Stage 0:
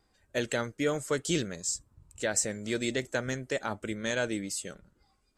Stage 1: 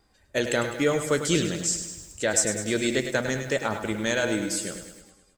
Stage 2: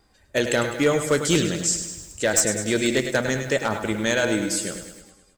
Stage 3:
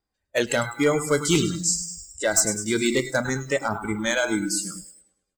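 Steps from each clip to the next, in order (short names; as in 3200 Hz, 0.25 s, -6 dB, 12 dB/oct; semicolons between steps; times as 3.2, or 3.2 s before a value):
de-hum 124.3 Hz, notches 30; on a send: feedback echo 0.104 s, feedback 58%, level -10 dB; on the sum: lo-fi delay 98 ms, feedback 55%, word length 8-bit, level -13 dB; gain +5.5 dB
one-sided fold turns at -14.5 dBFS; gain +3.5 dB
spectral noise reduction 22 dB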